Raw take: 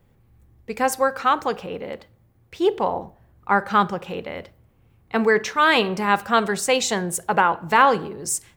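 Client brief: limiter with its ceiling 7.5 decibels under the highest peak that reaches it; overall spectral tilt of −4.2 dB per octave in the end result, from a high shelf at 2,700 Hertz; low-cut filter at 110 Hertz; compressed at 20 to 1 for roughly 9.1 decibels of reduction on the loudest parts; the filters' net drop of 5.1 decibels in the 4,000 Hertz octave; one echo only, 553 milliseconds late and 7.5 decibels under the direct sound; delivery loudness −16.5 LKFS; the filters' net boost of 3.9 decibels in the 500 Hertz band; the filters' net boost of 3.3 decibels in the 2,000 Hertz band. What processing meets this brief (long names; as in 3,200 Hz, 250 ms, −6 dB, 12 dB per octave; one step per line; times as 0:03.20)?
high-pass filter 110 Hz
parametric band 500 Hz +4.5 dB
parametric band 2,000 Hz +7.5 dB
high-shelf EQ 2,700 Hz −6 dB
parametric band 4,000 Hz −6 dB
downward compressor 20 to 1, threshold −18 dBFS
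brickwall limiter −14 dBFS
single-tap delay 553 ms −7.5 dB
level +10.5 dB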